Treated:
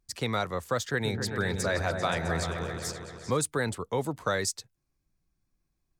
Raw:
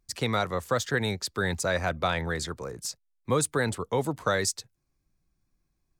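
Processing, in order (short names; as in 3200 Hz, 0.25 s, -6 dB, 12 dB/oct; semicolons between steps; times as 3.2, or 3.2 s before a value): 0.88–3.37 repeats that get brighter 0.131 s, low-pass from 400 Hz, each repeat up 2 oct, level -3 dB; gain -2.5 dB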